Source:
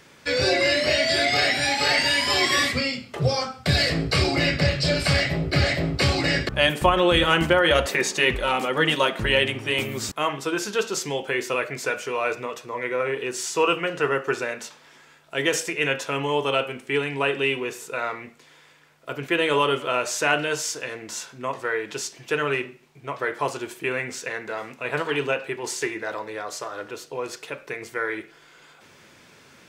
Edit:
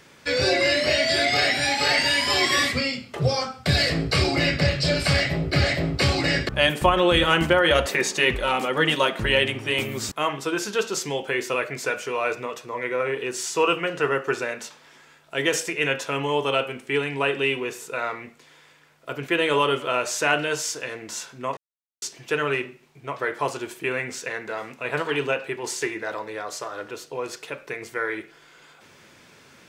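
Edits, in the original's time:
21.57–22.02 s: mute

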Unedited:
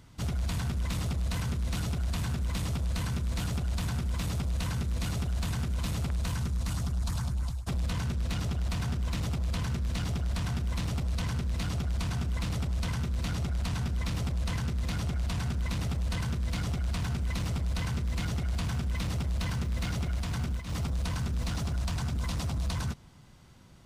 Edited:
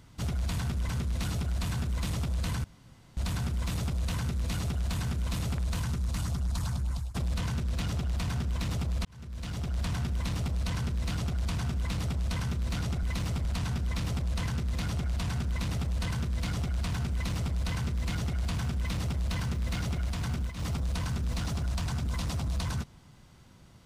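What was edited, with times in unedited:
0.89–1.41 s: delete
3.16–3.69 s: room tone
9.57–10.32 s: fade in
17.23–17.65 s: copy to 13.55 s

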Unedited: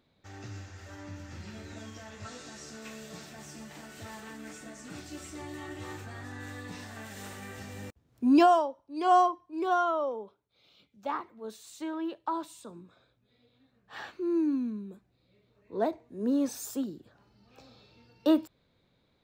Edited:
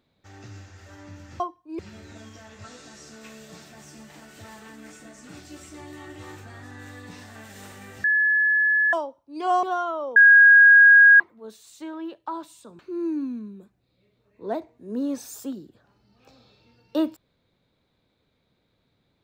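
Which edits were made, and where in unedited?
7.65–8.54 s: bleep 1.71 kHz -17 dBFS
9.24–9.63 s: move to 1.40 s
10.16–11.20 s: bleep 1.64 kHz -8.5 dBFS
12.79–14.10 s: delete

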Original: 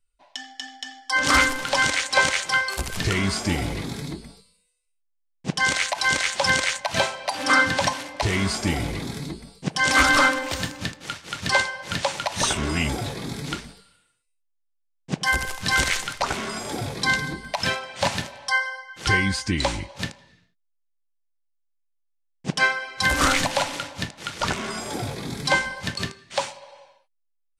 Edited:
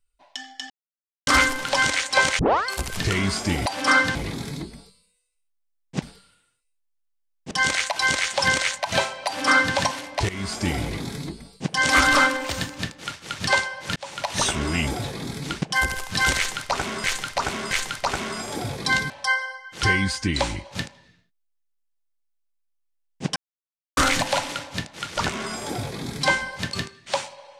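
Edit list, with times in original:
0.70–1.27 s: mute
2.39 s: tape start 0.28 s
7.28–7.77 s: copy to 3.66 s
8.31–8.86 s: fade in equal-power, from -14.5 dB
11.98–12.30 s: fade in
13.64–15.13 s: move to 5.53 s
15.88–16.55 s: loop, 3 plays
17.27–18.34 s: delete
22.60–23.21 s: mute

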